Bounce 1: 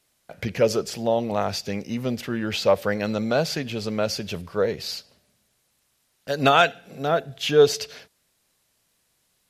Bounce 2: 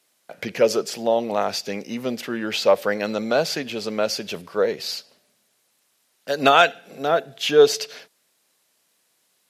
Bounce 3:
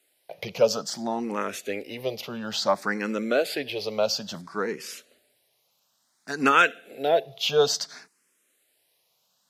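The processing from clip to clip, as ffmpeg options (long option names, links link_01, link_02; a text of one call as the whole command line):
ffmpeg -i in.wav -af "highpass=250,volume=2.5dB" out.wav
ffmpeg -i in.wav -filter_complex "[0:a]asplit=2[link_01][link_02];[link_02]afreqshift=0.58[link_03];[link_01][link_03]amix=inputs=2:normalize=1" out.wav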